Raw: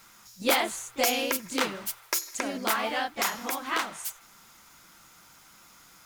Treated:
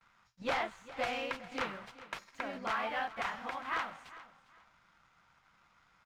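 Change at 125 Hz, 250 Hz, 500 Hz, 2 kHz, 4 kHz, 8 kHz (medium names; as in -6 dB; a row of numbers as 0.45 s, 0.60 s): -5.0 dB, -11.5 dB, -8.5 dB, -7.0 dB, -13.5 dB, -25.5 dB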